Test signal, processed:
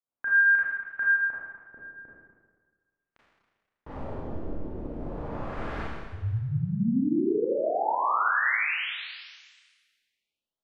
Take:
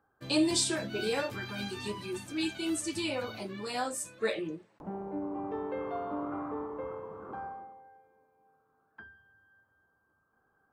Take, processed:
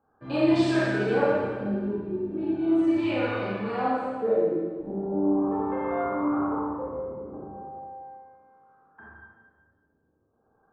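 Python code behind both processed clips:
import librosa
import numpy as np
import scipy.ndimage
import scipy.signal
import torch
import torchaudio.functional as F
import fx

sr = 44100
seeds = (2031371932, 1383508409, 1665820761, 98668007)

y = fx.filter_lfo_lowpass(x, sr, shape='sine', hz=0.38, low_hz=390.0, high_hz=1900.0, q=1.2)
y = fx.rev_schroeder(y, sr, rt60_s=1.5, comb_ms=27, drr_db=-7.5)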